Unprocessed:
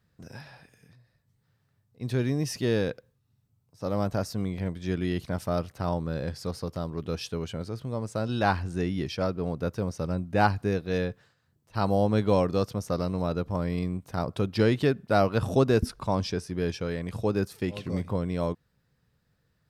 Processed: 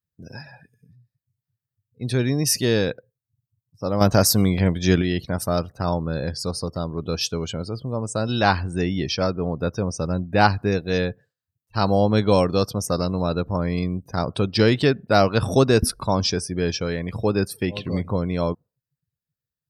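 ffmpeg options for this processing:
ffmpeg -i in.wav -filter_complex "[0:a]asettb=1/sr,asplit=3[link_01][link_02][link_03];[link_01]atrim=end=4.014[link_04];[link_02]atrim=start=4.01:end=5.02,asetpts=PTS-STARTPTS,afade=type=in:duration=0.004:curve=qsin,afade=type=out:start_time=1.006:duration=0.004:curve=qsin,acontrast=66[link_05];[link_03]atrim=start=5.016[link_06];[link_04][link_05]acrossfade=duration=0.004:curve1=hsin:curve2=qsin[link_07];[link_07][link_06]acrossfade=duration=0.004:curve1=qsin:curve2=hsin,afftdn=noise_reduction=30:noise_floor=-49,aemphasis=mode=production:type=75fm,volume=6dB" out.wav

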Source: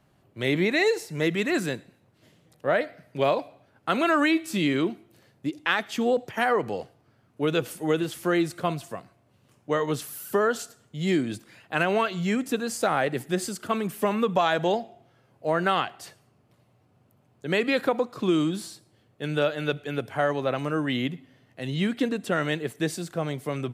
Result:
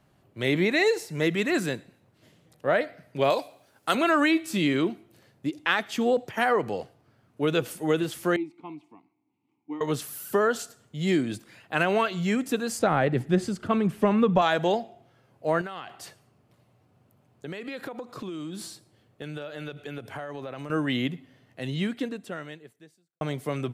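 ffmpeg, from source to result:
ffmpeg -i in.wav -filter_complex "[0:a]asettb=1/sr,asplit=3[link_01][link_02][link_03];[link_01]atrim=end=3.304[link_04];[link_02]atrim=start=3.3:end=3.95,asetpts=PTS-STARTPTS,afade=type=in:duration=0.004:curve=qsin,afade=type=out:start_time=0.646:duration=0.004:curve=qsin,bass=frequency=250:gain=-7,treble=frequency=4000:gain=14[link_05];[link_03]atrim=start=3.946[link_06];[link_04][link_05]acrossfade=duration=0.004:curve1=hsin:curve2=qsin[link_07];[link_07][link_06]acrossfade=duration=0.004:curve1=qsin:curve2=hsin,asettb=1/sr,asplit=3[link_08][link_09][link_10];[link_08]atrim=end=8.364[link_11];[link_09]atrim=start=8.36:end=9.81,asetpts=PTS-STARTPTS,afade=type=in:duration=0.004:curve=qsin,afade=type=out:start_time=1.446:duration=0.004:curve=qsin,asplit=3[link_12][link_13][link_14];[link_12]bandpass=frequency=300:width_type=q:width=8,volume=0dB[link_15];[link_13]bandpass=frequency=870:width_type=q:width=8,volume=-6dB[link_16];[link_14]bandpass=frequency=2240:width_type=q:width=8,volume=-9dB[link_17];[link_15][link_16][link_17]amix=inputs=3:normalize=0[link_18];[link_10]atrim=start=9.806[link_19];[link_11][link_18]acrossfade=duration=0.004:curve1=hsin:curve2=qsin[link_20];[link_20][link_19]acrossfade=duration=0.004:curve1=qsin:curve2=hsin,asettb=1/sr,asplit=3[link_21][link_22][link_23];[link_21]atrim=end=12.794[link_24];[link_22]atrim=start=12.79:end=14.42,asetpts=PTS-STARTPTS,afade=type=in:duration=0.004:curve=qsin,afade=type=out:start_time=1.626:duration=0.004:curve=qsin,aemphasis=mode=reproduction:type=bsi[link_25];[link_23]atrim=start=14.416[link_26];[link_24][link_25]acrossfade=duration=0.004:curve1=hsin:curve2=qsin[link_27];[link_27][link_26]acrossfade=duration=0.004:curve1=qsin:curve2=hsin,asettb=1/sr,asplit=3[link_28][link_29][link_30];[link_28]atrim=end=15.614[link_31];[link_29]atrim=start=15.61:end=20.7,asetpts=PTS-STARTPTS,afade=type=in:duration=0.004:curve=qsin,afade=type=out:start_time=5.086:duration=0.004:curve=qsin,acompressor=threshold=-32dB:ratio=12:attack=3.2:release=140:knee=1:detection=peak[link_32];[link_30]atrim=start=20.696[link_33];[link_31][link_32]acrossfade=duration=0.004:curve1=hsin:curve2=qsin[link_34];[link_34][link_33]acrossfade=duration=0.004:curve1=qsin:curve2=hsin,asplit=2[link_35][link_36];[link_35]atrim=end=23.21,asetpts=PTS-STARTPTS,afade=type=out:start_time=21.61:duration=1.6:curve=qua[link_37];[link_36]atrim=start=23.21,asetpts=PTS-STARTPTS,afade=type=in:duration=0.004:curve=hsin[link_38];[link_37][link_38]concat=n=2:v=0:a=1" out.wav

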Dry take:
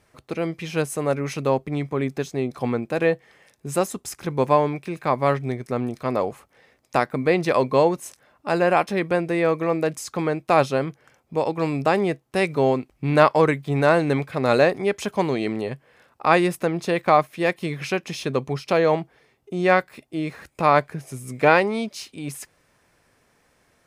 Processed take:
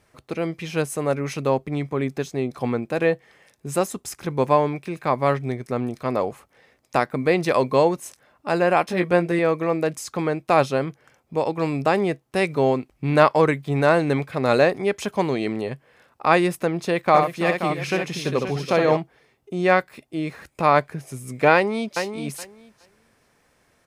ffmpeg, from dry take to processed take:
ffmpeg -i in.wav -filter_complex "[0:a]asettb=1/sr,asplit=3[link_01][link_02][link_03];[link_01]atrim=end=7.194[link_04];[link_02]atrim=start=7.19:end=7.94,asetpts=PTS-STARTPTS,afade=type=in:duration=0.004:curve=qsin,afade=type=out:start_time=0.746:duration=0.004:curve=qsin,highshelf=frequency=6400:gain=4.5[link_05];[link_03]atrim=start=7.936[link_06];[link_04][link_05]acrossfade=duration=0.004:curve1=hsin:curve2=qsin[link_07];[link_07][link_06]acrossfade=duration=0.004:curve1=qsin:curve2=hsin,asettb=1/sr,asplit=3[link_08][link_09][link_10];[link_08]atrim=end=8.864[link_11];[link_09]atrim=start=8.86:end=9.39,asetpts=PTS-STARTPTS,afade=type=in:duration=0.004:curve=qsin,afade=type=out:start_time=0.526:duration=0.004:curve=qsin,asplit=2[link_12][link_13];[link_13]adelay=17,volume=-4.5dB[link_14];[link_12][link_14]amix=inputs=2:normalize=0,atrim=end_sample=23373[link_15];[link_10]atrim=start=9.386[link_16];[link_11][link_15]acrossfade=duration=0.004:curve1=hsin:curve2=qsin[link_17];[link_17][link_16]acrossfade=duration=0.004:curve1=qsin:curve2=hsin,asplit=3[link_18][link_19][link_20];[link_18]afade=type=out:start_time=17.11:duration=0.02[link_21];[link_19]aecho=1:1:64|332|529:0.501|0.211|0.335,afade=type=in:start_time=17.11:duration=0.02,afade=type=out:start_time=18.96:duration=0.02[link_22];[link_20]afade=type=in:start_time=18.96:duration=0.02[link_23];[link_21][link_22][link_23]amix=inputs=3:normalize=0,asplit=2[link_24][link_25];[link_25]afade=type=in:start_time=21.54:duration=0.01,afade=type=out:start_time=22.01:duration=0.01,aecho=0:1:420|840|1260:0.446684|0.0670025|0.0100504[link_26];[link_24][link_26]amix=inputs=2:normalize=0" out.wav

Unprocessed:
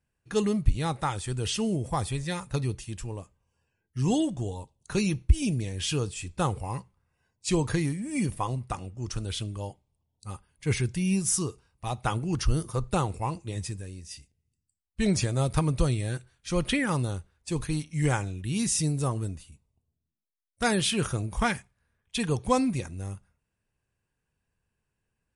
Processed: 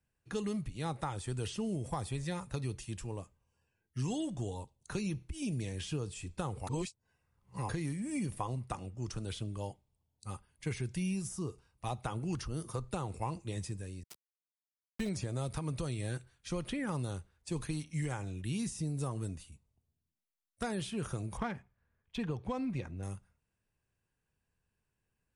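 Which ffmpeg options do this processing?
ffmpeg -i in.wav -filter_complex "[0:a]asettb=1/sr,asplit=3[link_01][link_02][link_03];[link_01]atrim=end=14.034[link_04];[link_02]atrim=start=14.03:end=15.09,asetpts=PTS-STARTPTS,afade=type=in:duration=0.004:curve=qsin,afade=type=out:start_time=1.056:duration=0.004:curve=qsin,aeval=exprs='val(0)*gte(abs(val(0)),0.0211)':channel_layout=same[link_05];[link_03]atrim=start=15.086[link_06];[link_04][link_05]acrossfade=duration=0.004:curve1=hsin:curve2=qsin[link_07];[link_07][link_06]acrossfade=duration=0.004:curve1=qsin:curve2=hsin,asettb=1/sr,asplit=3[link_08][link_09][link_10];[link_08]atrim=end=21.374[link_11];[link_09]atrim=start=21.37:end=23.03,asetpts=PTS-STARTPTS,afade=type=in:duration=0.004:curve=qsin,afade=type=out:start_time=1.656:duration=0.004:curve=qsin,adynamicsmooth=sensitivity=1:basefreq=2900[link_12];[link_10]atrim=start=23.026[link_13];[link_11][link_12]acrossfade=duration=0.004:curve1=hsin:curve2=qsin[link_14];[link_14][link_13]acrossfade=duration=0.004:curve1=qsin:curve2=hsin,asplit=3[link_15][link_16][link_17];[link_15]atrim=end=6.672[link_18];[link_16]atrim=start=6.668:end=7.692,asetpts=PTS-STARTPTS,areverse[link_19];[link_17]atrim=start=7.688[link_20];[link_18][link_19]acrossfade=duration=0.004:curve1=hsin:curve2=hsin[link_21];[link_21][link_20]acrossfade=duration=0.004:curve1=hsin:curve2=hsin,alimiter=limit=-19dB:level=0:latency=1:release=226,acrossover=split=110|1100[link_22][link_23][link_24];[link_22]acompressor=threshold=-43dB:ratio=4[link_25];[link_23]acompressor=threshold=-31dB:ratio=4[link_26];[link_24]acompressor=threshold=-42dB:ratio=4[link_27];[link_25][link_26][link_27]amix=inputs=3:normalize=0,volume=-3dB" out.wav

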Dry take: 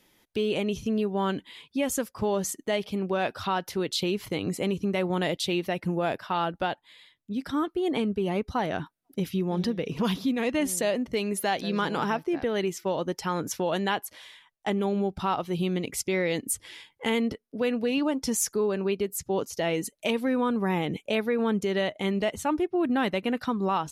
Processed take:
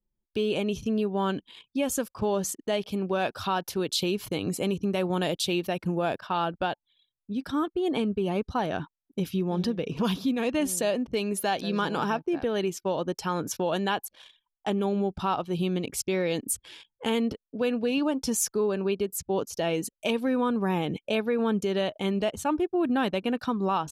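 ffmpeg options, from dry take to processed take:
ffmpeg -i in.wav -filter_complex "[0:a]asettb=1/sr,asplit=3[link_01][link_02][link_03];[link_01]atrim=end=2.894[link_04];[link_02]atrim=start=2.89:end=6.02,asetpts=PTS-STARTPTS,afade=type=in:duration=0.004:curve=qsin,afade=type=out:start_time=3.126:duration=0.004:curve=qsin,highshelf=frequency=7000:gain=5.5[link_05];[link_03]atrim=start=6.016[link_06];[link_04][link_05]acrossfade=duration=0.004:curve1=hsin:curve2=qsin[link_07];[link_07][link_06]acrossfade=duration=0.004:curve1=qsin:curve2=hsin,bandreject=frequency=2000:width=5.6,anlmdn=0.0158" out.wav

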